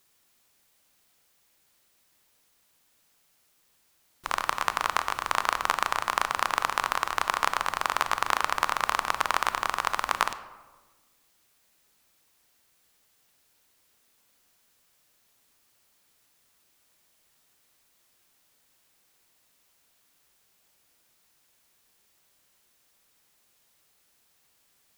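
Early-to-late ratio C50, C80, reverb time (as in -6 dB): 13.0 dB, 14.5 dB, 1.3 s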